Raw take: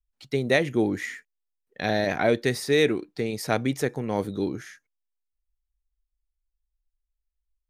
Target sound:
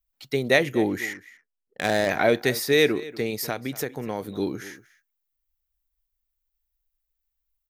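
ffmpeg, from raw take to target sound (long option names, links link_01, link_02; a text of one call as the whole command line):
ffmpeg -i in.wav -filter_complex "[0:a]lowshelf=frequency=340:gain=-6,asplit=3[link_01][link_02][link_03];[link_01]afade=type=out:start_time=3.35:duration=0.02[link_04];[link_02]acompressor=threshold=-29dB:ratio=6,afade=type=in:start_time=3.35:duration=0.02,afade=type=out:start_time=4.35:duration=0.02[link_05];[link_03]afade=type=in:start_time=4.35:duration=0.02[link_06];[link_04][link_05][link_06]amix=inputs=3:normalize=0,aexciter=amount=3.3:drive=6.6:freq=12000,asettb=1/sr,asplit=3[link_07][link_08][link_09];[link_07]atrim=end=1.134[link_10];[link_08]atrim=start=1.13:end=2.1,asetpts=PTS-STARTPTS,afade=type=in:duration=0.004:curve=qsin,afade=type=out:start_time=0.966:duration=0.004:curve=qsin,adynamicsmooth=sensitivity=5.5:basefreq=560[link_11];[link_09]atrim=start=2.096[link_12];[link_10][link_11]acrossfade=duration=0.004:curve1=hsin:curve2=qsin[link_13];[link_13][link_12]acrossfade=duration=0.004:curve1=qsin:curve2=hsin,asplit=2[link_14][link_15];[link_15]adelay=239.1,volume=-18dB,highshelf=frequency=4000:gain=-5.38[link_16];[link_14][link_16]amix=inputs=2:normalize=0,volume=3.5dB" out.wav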